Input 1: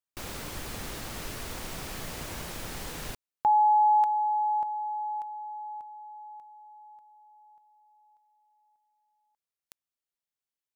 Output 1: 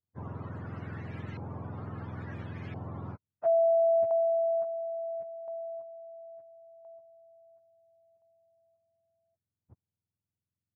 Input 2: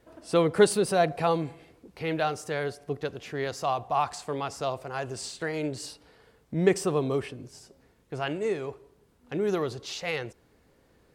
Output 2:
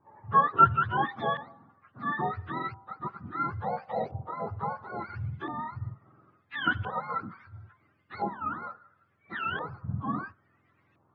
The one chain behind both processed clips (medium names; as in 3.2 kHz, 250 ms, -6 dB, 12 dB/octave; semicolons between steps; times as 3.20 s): spectrum inverted on a logarithmic axis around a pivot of 750 Hz; LFO low-pass saw up 0.73 Hz 870–2400 Hz; trim -4 dB